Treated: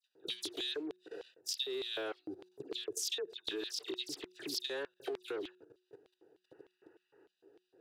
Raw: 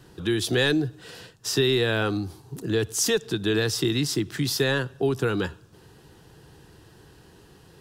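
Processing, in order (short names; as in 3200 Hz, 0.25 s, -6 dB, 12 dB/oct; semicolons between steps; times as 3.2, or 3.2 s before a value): Wiener smoothing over 41 samples; dispersion lows, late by 74 ms, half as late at 2200 Hz; level quantiser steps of 17 dB; spectral repair 6.48–7.24, 810–2900 Hz before; LFO high-pass square 3.3 Hz 360–3500 Hz; bell 200 Hz -14.5 dB 1.2 oct; compressor 2.5:1, threshold -51 dBFS, peak gain reduction 16.5 dB; low shelf 91 Hz -8 dB; de-hum 182.6 Hz, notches 2; gain +8.5 dB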